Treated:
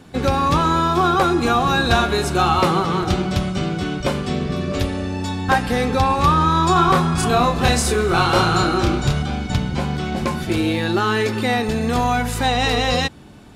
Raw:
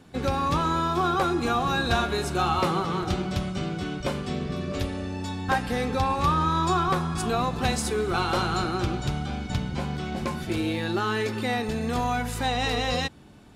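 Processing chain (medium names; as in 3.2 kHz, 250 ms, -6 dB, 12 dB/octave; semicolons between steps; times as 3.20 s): 6.73–9.23 s: doubling 29 ms -3 dB; trim +7.5 dB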